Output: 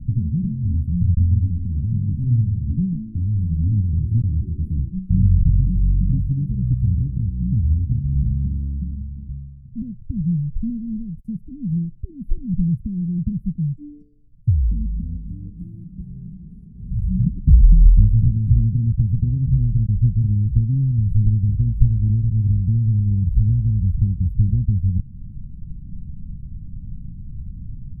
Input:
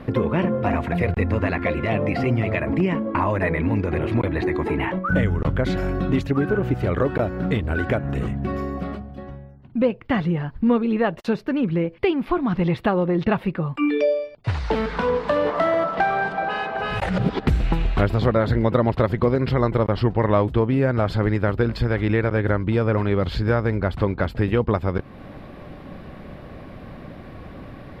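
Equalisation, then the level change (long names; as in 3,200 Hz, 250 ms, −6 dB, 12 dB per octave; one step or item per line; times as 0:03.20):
inverse Chebyshev band-stop filter 560–3,900 Hz, stop band 60 dB
spectral tilt −4 dB per octave
high-shelf EQ 4,200 Hz +6 dB
−6.0 dB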